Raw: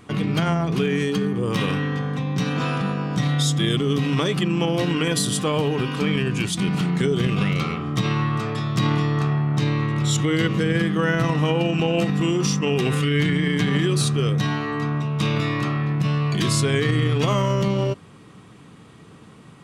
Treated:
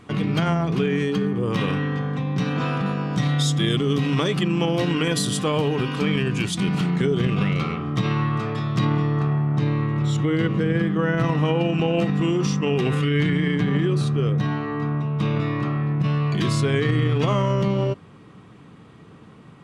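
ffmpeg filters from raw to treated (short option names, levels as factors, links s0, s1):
-af "asetnsamples=n=441:p=0,asendcmd='0.75 lowpass f 3100;2.86 lowpass f 7400;6.96 lowpass f 3000;8.85 lowpass f 1400;11.18 lowpass f 2700;13.56 lowpass f 1300;16.04 lowpass f 2700',lowpass=f=5500:p=1"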